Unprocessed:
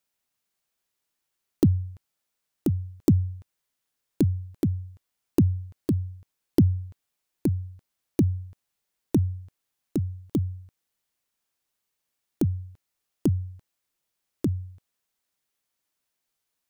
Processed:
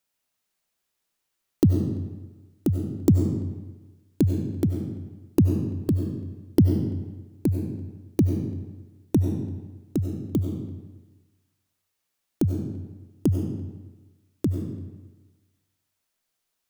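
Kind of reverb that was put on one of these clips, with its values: algorithmic reverb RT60 1.2 s, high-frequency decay 0.8×, pre-delay 55 ms, DRR 3.5 dB; trim +1 dB

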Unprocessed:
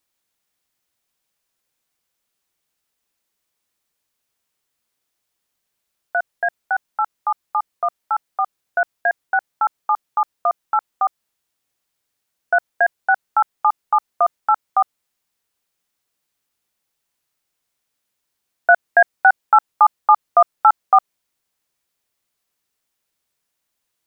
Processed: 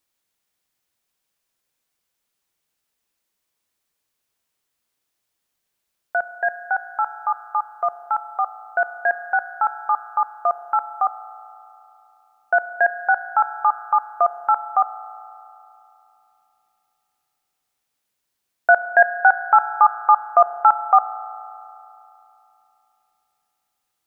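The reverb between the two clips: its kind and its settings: spring tank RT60 3 s, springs 34 ms, chirp 65 ms, DRR 12.5 dB; trim -1 dB

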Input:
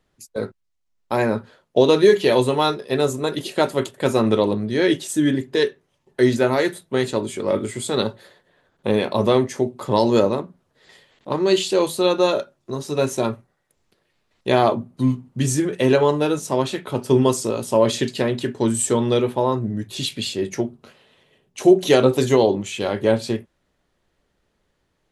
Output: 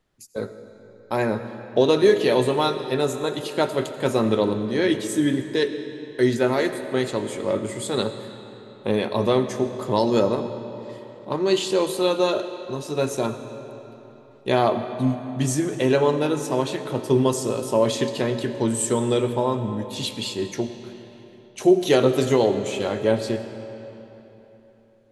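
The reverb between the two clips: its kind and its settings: algorithmic reverb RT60 3.6 s, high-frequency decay 0.75×, pre-delay 45 ms, DRR 9.5 dB; trim -3 dB

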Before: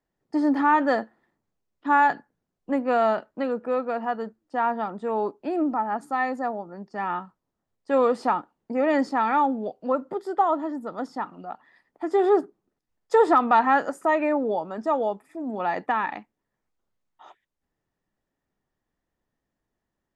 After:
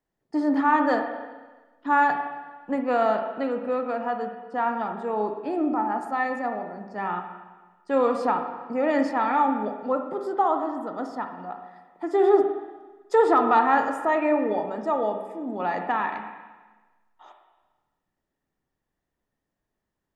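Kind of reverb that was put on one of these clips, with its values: spring tank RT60 1.3 s, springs 33/51/56 ms, chirp 80 ms, DRR 5 dB; trim -1.5 dB

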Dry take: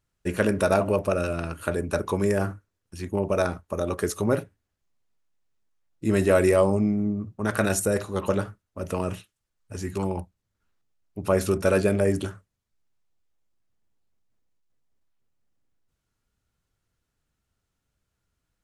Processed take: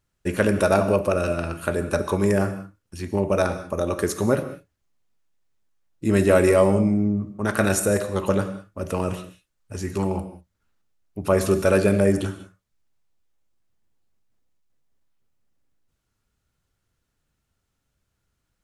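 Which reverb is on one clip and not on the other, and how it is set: gated-style reverb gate 220 ms flat, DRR 10 dB; trim +2.5 dB

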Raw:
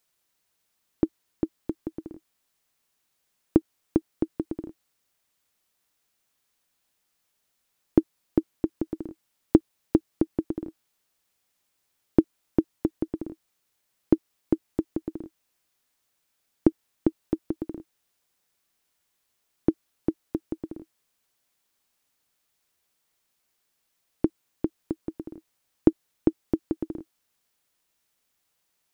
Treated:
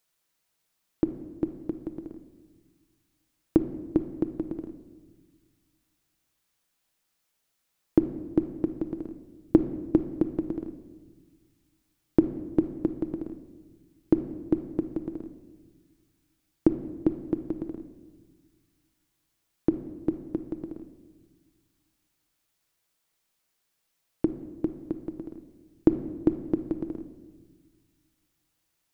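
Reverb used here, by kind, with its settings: simulated room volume 1200 m³, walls mixed, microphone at 0.65 m; trim -2 dB

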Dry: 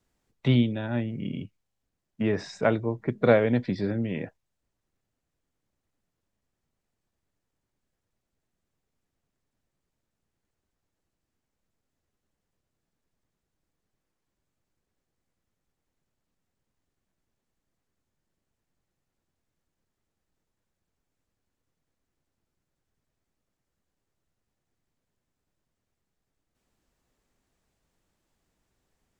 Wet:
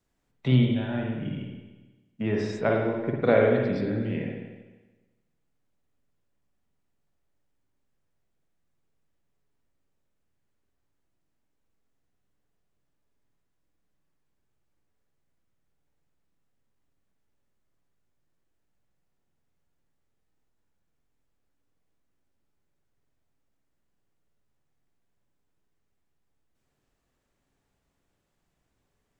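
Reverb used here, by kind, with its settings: spring tank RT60 1.2 s, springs 47/54 ms, chirp 45 ms, DRR -0.5 dB; trim -3 dB

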